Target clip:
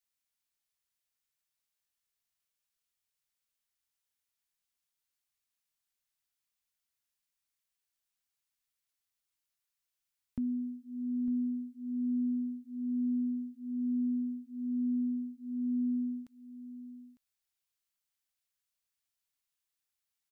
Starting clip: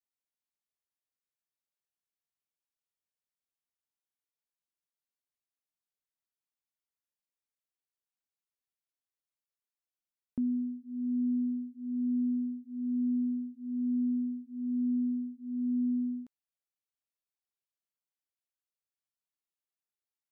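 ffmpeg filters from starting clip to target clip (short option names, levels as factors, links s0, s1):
-af "equalizer=f=380:w=0.46:g=-12.5,aecho=1:1:903:0.211,volume=2.37"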